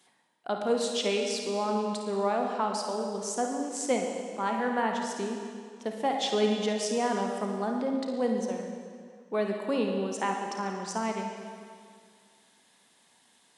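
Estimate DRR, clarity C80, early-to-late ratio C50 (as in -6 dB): 1.5 dB, 4.5 dB, 2.0 dB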